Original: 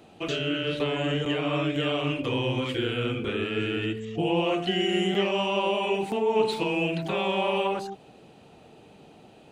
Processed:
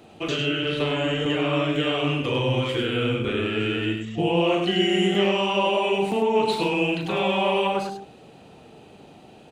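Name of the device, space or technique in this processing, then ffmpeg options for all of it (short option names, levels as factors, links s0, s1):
slapback doubling: -filter_complex "[0:a]asplit=3[s0][s1][s2];[s1]adelay=40,volume=0.398[s3];[s2]adelay=101,volume=0.501[s4];[s0][s3][s4]amix=inputs=3:normalize=0,volume=1.33"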